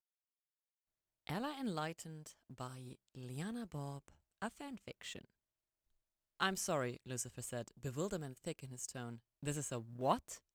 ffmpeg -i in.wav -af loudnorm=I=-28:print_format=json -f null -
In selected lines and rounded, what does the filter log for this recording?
"input_i" : "-43.0",
"input_tp" : "-19.2",
"input_lra" : "6.4",
"input_thresh" : "-53.3",